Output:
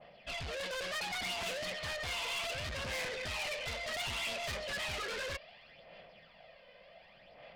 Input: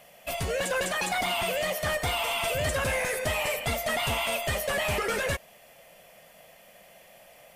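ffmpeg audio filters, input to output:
ffmpeg -i in.wav -af "aresample=11025,asoftclip=type=hard:threshold=-27.5dB,aresample=44100,aphaser=in_gain=1:out_gain=1:delay=2:decay=0.49:speed=0.67:type=sinusoidal,asoftclip=type=tanh:threshold=-34dB,adynamicequalizer=threshold=0.00251:dfrequency=1600:dqfactor=0.7:tfrequency=1600:tqfactor=0.7:attack=5:release=100:ratio=0.375:range=3.5:mode=boostabove:tftype=highshelf,volume=-5.5dB" out.wav

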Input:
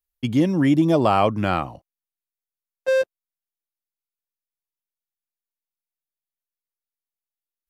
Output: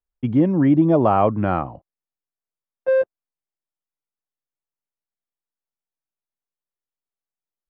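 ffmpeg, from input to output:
ffmpeg -i in.wav -af "lowpass=1300,volume=2dB" out.wav

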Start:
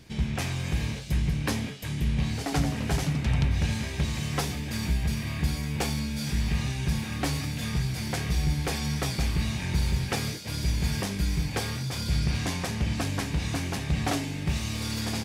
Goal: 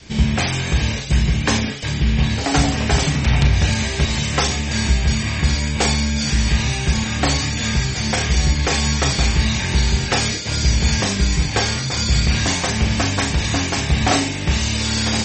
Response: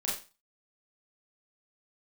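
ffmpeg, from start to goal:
-filter_complex "[0:a]aresample=22050,aresample=44100,asplit=2[link_01][link_02];[1:a]atrim=start_sample=2205,highshelf=frequency=5800:gain=11.5[link_03];[link_02][link_03]afir=irnorm=-1:irlink=0,volume=-8dB[link_04];[link_01][link_04]amix=inputs=2:normalize=0,asettb=1/sr,asplit=3[link_05][link_06][link_07];[link_05]atrim=end=1.924[link_08];[link_06]atrim=start=1.92:end=2.46,asetpts=PTS-STARTPTS,afade=type=in:duration=0.004:curve=qsin,afade=type=out:start_time=0.536:duration=0.004:curve=qsin,adynamicsmooth=sensitivity=4.5:basefreq=7100[link_09];[link_07]atrim=start=2.456[link_10];[link_08][link_09]acrossfade=duration=0.004:curve1=hsin:curve2=qsin[link_11];[link_11][link_10]acrossfade=duration=0.004:curve1=qsin:curve2=hsin,adynamicequalizer=threshold=0.0126:dfrequency=180:dqfactor=0.86:tfrequency=180:tqfactor=0.86:attack=5:release=100:ratio=0.375:range=2.5:mode=cutabove:tftype=bell,volume=9dB" -ar 44100 -c:a libmp3lame -b:a 32k

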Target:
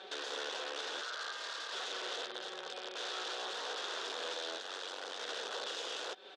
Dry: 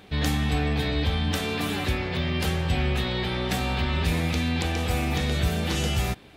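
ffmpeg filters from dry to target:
ffmpeg -i in.wav -filter_complex "[0:a]aecho=1:1:5.3:0.83,alimiter=limit=-21.5dB:level=0:latency=1:release=235,acompressor=threshold=-34dB:ratio=8,asettb=1/sr,asplit=3[link_01][link_02][link_03];[link_01]atrim=end=1.014[link_04];[link_02]atrim=start=1.01:end=1.73,asetpts=PTS-STARTPTS,afade=type=in:duration=0.004:curve=qsin,afade=type=out:start_time=0.716:duration=0.004:curve=qsin,aeval=exprs='val(0)*sin(2*PI*1400*n/s)':channel_layout=same[link_05];[link_03]atrim=start=1.726[link_06];[link_04][link_05]acrossfade=duration=0.004:curve1=hsin:curve2=qsin[link_07];[link_07][link_06]acrossfade=duration=0.004:curve1=qsin:curve2=hsin,asplit=3[link_08][link_09][link_10];[link_08]afade=type=out:start_time=2.24:duration=0.02[link_11];[link_09]aeval=exprs='0.15*(cos(1*acos(clip(val(0)/0.15,-1,1)))-cos(1*PI/2))+0.015*(cos(2*acos(clip(val(0)/0.15,-1,1)))-cos(2*PI/2))+0.0168*(cos(3*acos(clip(val(0)/0.15,-1,1)))-cos(3*PI/2))':channel_layout=same,afade=type=in:start_time=2.24:duration=0.02,afade=type=out:start_time=2.95:duration=0.02[link_12];[link_10]afade=type=in:start_time=2.95:duration=0.02[link_13];[link_11][link_12][link_13]amix=inputs=3:normalize=0,aeval=exprs='(mod(47.3*val(0)+1,2)-1)/47.3':channel_layout=same,asplit=3[link_14][link_15][link_16];[link_14]afade=type=out:start_time=4.57:duration=0.02[link_17];[link_15]aeval=exprs='val(0)*sin(2*PI*47*n/s)':channel_layout=same,afade=type=in:start_time=4.57:duration=0.02,afade=type=out:start_time=5.19:duration=0.02[link_18];[link_16]afade=type=in:start_time=5.19:duration=0.02[link_19];[link_17][link_18][link_19]amix=inputs=3:normalize=0,highpass=frequency=390:width=0.5412,highpass=frequency=390:width=1.3066,equalizer=frequency=480:width_type=q:width=4:gain=7,equalizer=frequency=1500:width_type=q:width=4:gain=6,equalizer=frequency=2200:width_type=q:width=4:gain=-8,equalizer=frequency=3500:width_type=q:width=4:gain=8,lowpass=frequency=6400:width=0.5412,lowpass=frequency=6400:width=1.3066,volume=-2dB" out.wav

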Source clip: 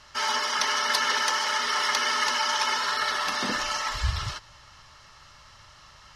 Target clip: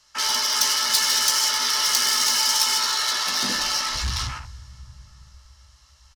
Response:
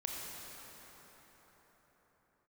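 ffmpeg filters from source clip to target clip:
-filter_complex "[0:a]acrossover=split=370|3000[link_01][link_02][link_03];[link_02]acompressor=threshold=-34dB:ratio=2[link_04];[link_01][link_04][link_03]amix=inputs=3:normalize=0,asplit=2[link_05][link_06];[1:a]atrim=start_sample=2205,lowshelf=frequency=330:gain=-3[link_07];[link_06][link_07]afir=irnorm=-1:irlink=0,volume=-5dB[link_08];[link_05][link_08]amix=inputs=2:normalize=0,afwtdn=0.02,asoftclip=type=tanh:threshold=-23.5dB,bass=frequency=250:gain=0,treble=frequency=4000:gain=15,asplit=2[link_09][link_10];[link_10]adelay=16,volume=-7.5dB[link_11];[link_09][link_11]amix=inputs=2:normalize=0"

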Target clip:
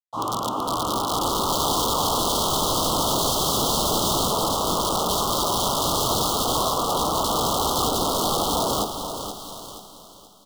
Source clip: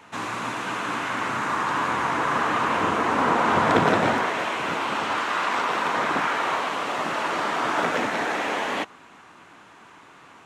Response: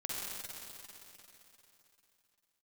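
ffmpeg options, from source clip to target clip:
-filter_complex "[0:a]bandreject=frequency=50:width_type=h:width=6,bandreject=frequency=100:width_type=h:width=6,bandreject=frequency=150:width_type=h:width=6,bandreject=frequency=200:width_type=h:width=6,bandreject=frequency=250:width_type=h:width=6,bandreject=frequency=300:width_type=h:width=6,bandreject=frequency=350:width_type=h:width=6,bandreject=frequency=400:width_type=h:width=6,afwtdn=0.0316,lowpass=5600,highshelf=frequency=4000:gain=8,asplit=2[link_01][link_02];[link_02]alimiter=limit=-14.5dB:level=0:latency=1:release=277,volume=-1.5dB[link_03];[link_01][link_03]amix=inputs=2:normalize=0,aeval=exprs='sgn(val(0))*max(abs(val(0))-0.0075,0)':channel_layout=same,flanger=delay=18:depth=2.1:speed=2.9,aeval=exprs='(mod(8.91*val(0)+1,2)-1)/8.91':channel_layout=same,asuperstop=centerf=2000:order=12:qfactor=1.1,aecho=1:1:477|954|1431|1908:0.355|0.121|0.041|0.0139,asplit=2[link_04][link_05];[1:a]atrim=start_sample=2205,adelay=143[link_06];[link_05][link_06]afir=irnorm=-1:irlink=0,volume=-14dB[link_07];[link_04][link_07]amix=inputs=2:normalize=0,adynamicequalizer=threshold=0.01:dfrequency=1700:dqfactor=0.7:tfrequency=1700:tqfactor=0.7:attack=5:release=100:ratio=0.375:range=2:mode=cutabove:tftype=highshelf,volume=4.5dB"

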